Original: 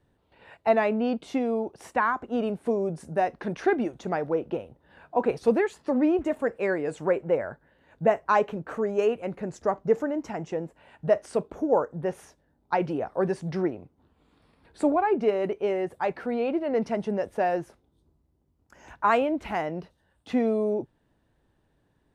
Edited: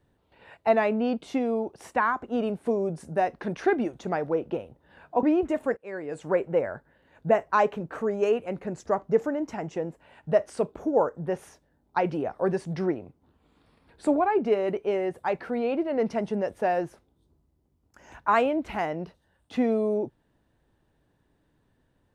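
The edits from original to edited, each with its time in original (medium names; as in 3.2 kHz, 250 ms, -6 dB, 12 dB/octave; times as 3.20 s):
5.23–5.99 s: delete
6.53–7.13 s: fade in, from -23.5 dB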